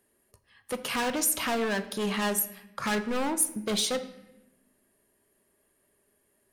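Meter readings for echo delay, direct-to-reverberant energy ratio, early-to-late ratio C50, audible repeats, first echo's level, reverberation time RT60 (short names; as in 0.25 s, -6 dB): none, 10.0 dB, 13.5 dB, none, none, 0.95 s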